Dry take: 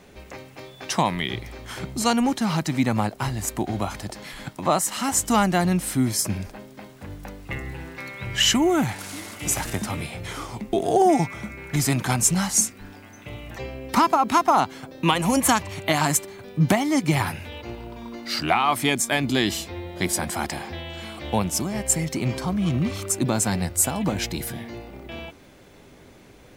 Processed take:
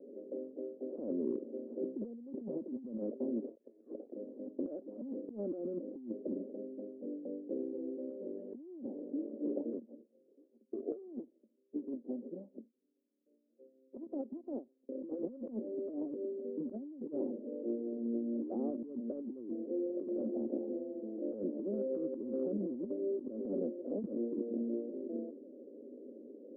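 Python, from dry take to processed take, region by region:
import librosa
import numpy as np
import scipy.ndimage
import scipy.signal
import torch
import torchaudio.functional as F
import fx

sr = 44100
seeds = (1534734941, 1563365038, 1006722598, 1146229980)

y = fx.chain(x, sr, fx.freq_invert(carrier_hz=2500),
    fx.over_compress(threshold_db=-34.0, ratio=-1.0), at=(3.46, 4.13))
y = fx.chain(y, sr, fx.echo_feedback(ms=81, feedback_pct=31, wet_db=-17.0),
    fx.upward_expand(threshold_db=-39.0, expansion=2.5), at=(9.79, 14.89))
y = scipy.signal.sosfilt(scipy.signal.cheby1(4, 1.0, [230.0, 560.0], 'bandpass', fs=sr, output='sos'), y)
y = fx.over_compress(y, sr, threshold_db=-36.0, ratio=-1.0)
y = fx.end_taper(y, sr, db_per_s=280.0)
y = F.gain(torch.from_numpy(y), -3.0).numpy()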